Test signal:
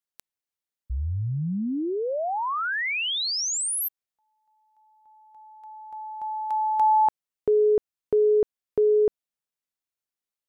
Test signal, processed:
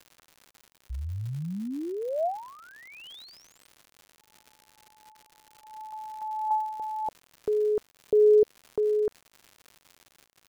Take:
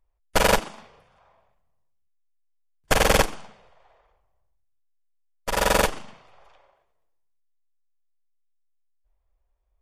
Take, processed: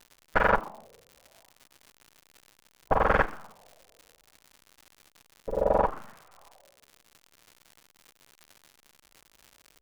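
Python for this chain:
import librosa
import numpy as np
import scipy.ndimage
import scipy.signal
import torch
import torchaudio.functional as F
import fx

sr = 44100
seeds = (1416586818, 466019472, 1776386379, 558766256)

y = fx.filter_lfo_lowpass(x, sr, shape='sine', hz=0.69, low_hz=450.0, high_hz=1600.0, q=2.5)
y = fx.dmg_crackle(y, sr, seeds[0], per_s=150.0, level_db=-33.0)
y = y * 10.0 ** (-6.0 / 20.0)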